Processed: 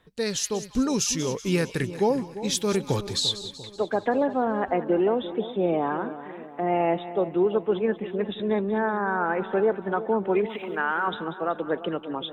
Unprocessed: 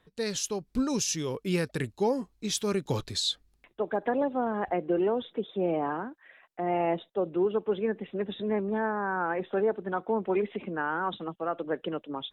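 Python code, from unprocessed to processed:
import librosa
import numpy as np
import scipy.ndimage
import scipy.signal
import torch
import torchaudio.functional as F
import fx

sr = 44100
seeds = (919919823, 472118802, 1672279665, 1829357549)

p1 = fx.tilt_eq(x, sr, slope=3.5, at=(10.49, 11.08))
p2 = p1 + fx.echo_split(p1, sr, split_hz=1000.0, low_ms=345, high_ms=189, feedback_pct=52, wet_db=-13, dry=0)
y = p2 * librosa.db_to_amplitude(4.0)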